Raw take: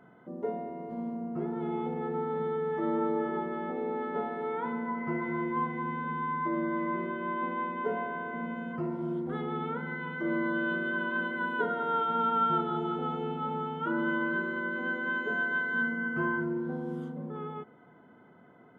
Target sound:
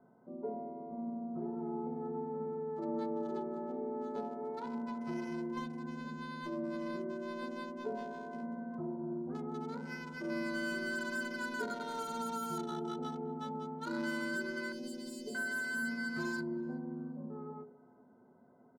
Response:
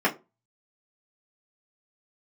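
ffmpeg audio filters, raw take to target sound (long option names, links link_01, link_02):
-filter_complex "[0:a]bandreject=frequency=59.88:width_type=h:width=4,bandreject=frequency=119.76:width_type=h:width=4,bandreject=frequency=179.64:width_type=h:width=4,bandreject=frequency=239.52:width_type=h:width=4,bandreject=frequency=299.4:width_type=h:width=4,bandreject=frequency=359.28:width_type=h:width=4,bandreject=frequency=419.16:width_type=h:width=4,bandreject=frequency=479.04:width_type=h:width=4,bandreject=frequency=538.92:width_type=h:width=4,bandreject=frequency=598.8:width_type=h:width=4,bandreject=frequency=658.68:width_type=h:width=4,bandreject=frequency=718.56:width_type=h:width=4,bandreject=frequency=778.44:width_type=h:width=4,bandreject=frequency=838.32:width_type=h:width=4,bandreject=frequency=898.2:width_type=h:width=4,bandreject=frequency=958.08:width_type=h:width=4,bandreject=frequency=1017.96:width_type=h:width=4,bandreject=frequency=1077.84:width_type=h:width=4,bandreject=frequency=1137.72:width_type=h:width=4,bandreject=frequency=1197.6:width_type=h:width=4,bandreject=frequency=1257.48:width_type=h:width=4,bandreject=frequency=1317.36:width_type=h:width=4,bandreject=frequency=1377.24:width_type=h:width=4,acrossover=split=1200[link_01][link_02];[link_02]acrusher=bits=5:mix=0:aa=0.5[link_03];[link_01][link_03]amix=inputs=2:normalize=0,acrossover=split=470|3000[link_04][link_05][link_06];[link_05]acompressor=threshold=-37dB:ratio=2[link_07];[link_04][link_07][link_06]amix=inputs=3:normalize=0,asettb=1/sr,asplit=3[link_08][link_09][link_10];[link_08]atrim=end=14.724[link_11];[link_09]atrim=start=14.72:end=15.35,asetpts=PTS-STARTPTS,afade=type=in:duration=0.004:curve=qsin,afade=type=out:start_time=0.626:duration=0.004:curve=qsin,asuperstop=centerf=1400:order=4:qfactor=0.56[link_12];[link_10]atrim=start=15.346[link_13];[link_11][link_12]acrossfade=duration=0.004:curve1=hsin:curve2=qsin[link_14];[link_14][link_13]acrossfade=duration=0.004:curve1=qsin:curve2=hsin,asplit=2[link_15][link_16];[link_16]adelay=377,lowpass=frequency=2100:poles=1,volume=-21.5dB,asplit=2[link_17][link_18];[link_18]adelay=377,lowpass=frequency=2100:poles=1,volume=0.26[link_19];[link_15][link_17][link_19]amix=inputs=3:normalize=0,asplit=2[link_20][link_21];[1:a]atrim=start_sample=2205,asetrate=57330,aresample=44100[link_22];[link_21][link_22]afir=irnorm=-1:irlink=0,volume=-18.5dB[link_23];[link_20][link_23]amix=inputs=2:normalize=0,volume=-7.5dB"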